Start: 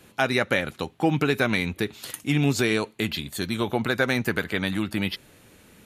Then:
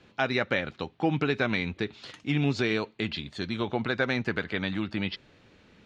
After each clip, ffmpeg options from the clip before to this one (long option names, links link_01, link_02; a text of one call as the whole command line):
ffmpeg -i in.wav -af "lowpass=frequency=5100:width=0.5412,lowpass=frequency=5100:width=1.3066,volume=-4dB" out.wav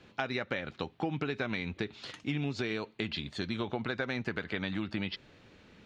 ffmpeg -i in.wav -af "acompressor=threshold=-30dB:ratio=6" out.wav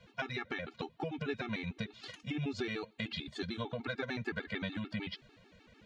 ffmpeg -i in.wav -af "afftfilt=real='re*gt(sin(2*PI*6.7*pts/sr)*(1-2*mod(floor(b*sr/1024/230),2)),0)':imag='im*gt(sin(2*PI*6.7*pts/sr)*(1-2*mod(floor(b*sr/1024/230),2)),0)':win_size=1024:overlap=0.75" out.wav